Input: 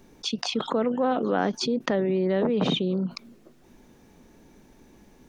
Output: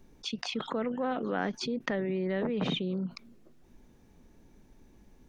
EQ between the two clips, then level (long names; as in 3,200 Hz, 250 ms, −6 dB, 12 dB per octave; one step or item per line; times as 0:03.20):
low-shelf EQ 110 Hz +11.5 dB
dynamic equaliser 2,000 Hz, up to +8 dB, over −47 dBFS, Q 1.3
−9.0 dB